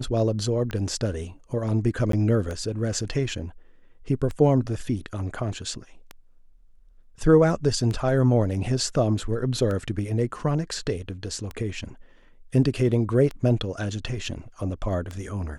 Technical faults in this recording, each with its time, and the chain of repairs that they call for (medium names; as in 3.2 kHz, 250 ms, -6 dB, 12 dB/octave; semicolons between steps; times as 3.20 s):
tick 33 1/3 rpm -19 dBFS
2.12–2.13 s: dropout 13 ms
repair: de-click; interpolate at 2.12 s, 13 ms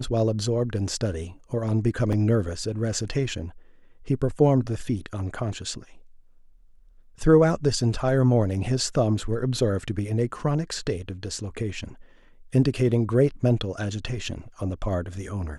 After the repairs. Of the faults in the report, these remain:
nothing left